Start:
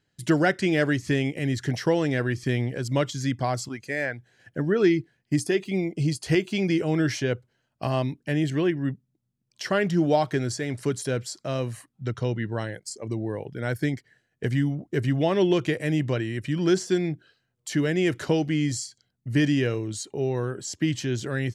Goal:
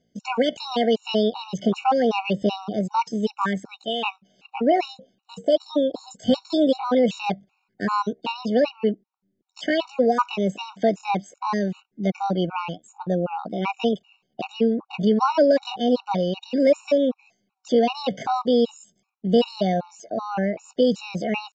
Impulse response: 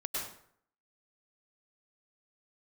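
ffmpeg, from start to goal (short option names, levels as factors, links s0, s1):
-filter_complex "[0:a]aemphasis=mode=reproduction:type=75fm,asetrate=70004,aresample=44100,atempo=0.629961,asplit=2[s0][s1];[s1]alimiter=limit=0.158:level=0:latency=1:release=120,volume=1[s2];[s0][s2]amix=inputs=2:normalize=0,aresample=16000,aresample=44100,afftfilt=real='re*gt(sin(2*PI*2.6*pts/sr)*(1-2*mod(floor(b*sr/1024/740),2)),0)':imag='im*gt(sin(2*PI*2.6*pts/sr)*(1-2*mod(floor(b*sr/1024/740),2)),0)':win_size=1024:overlap=0.75"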